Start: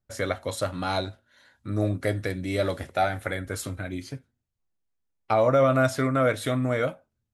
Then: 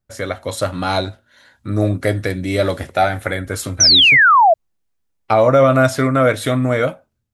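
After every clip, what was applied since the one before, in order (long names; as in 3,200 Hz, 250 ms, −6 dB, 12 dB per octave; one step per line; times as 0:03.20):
sound drawn into the spectrogram fall, 0:03.80–0:04.54, 620–6,200 Hz −18 dBFS
automatic gain control gain up to 5 dB
level +3.5 dB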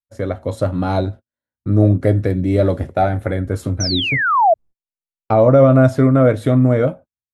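noise gate −35 dBFS, range −37 dB
tilt shelving filter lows +9.5 dB
level −3.5 dB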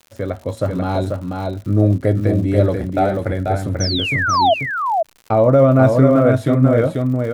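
on a send: single-tap delay 489 ms −4 dB
on the sum: surface crackle 110 per second −30 dBFS
level −1.5 dB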